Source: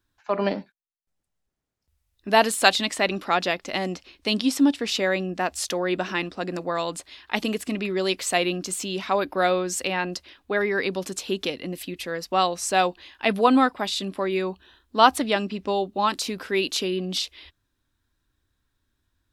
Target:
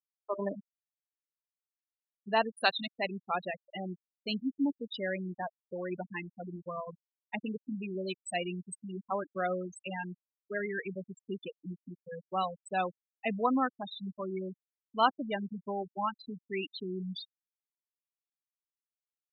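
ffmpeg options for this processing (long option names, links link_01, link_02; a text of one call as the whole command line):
ffmpeg -i in.wav -af "asubboost=boost=4.5:cutoff=130,afftfilt=real='re*gte(hypot(re,im),0.178)':imag='im*gte(hypot(re,im),0.178)':win_size=1024:overlap=0.75,volume=-9dB" out.wav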